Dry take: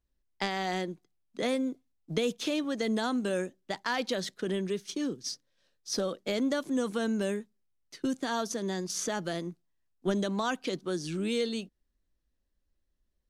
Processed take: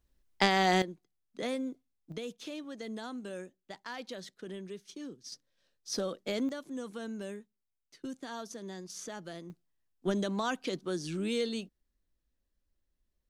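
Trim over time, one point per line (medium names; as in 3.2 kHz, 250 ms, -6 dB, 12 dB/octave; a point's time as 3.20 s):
+6 dB
from 0.82 s -5 dB
from 2.12 s -11 dB
from 5.32 s -3 dB
from 6.49 s -10 dB
from 9.50 s -2 dB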